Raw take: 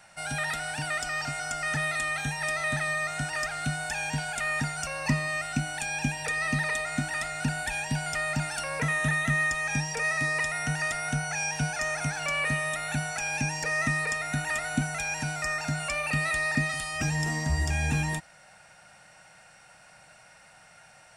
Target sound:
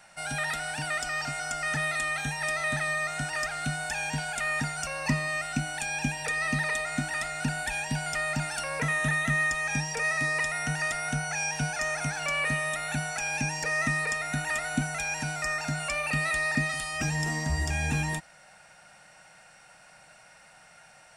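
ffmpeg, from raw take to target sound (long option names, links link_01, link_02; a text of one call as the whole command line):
ffmpeg -i in.wav -af "equalizer=frequency=100:width=2.1:gain=-6" out.wav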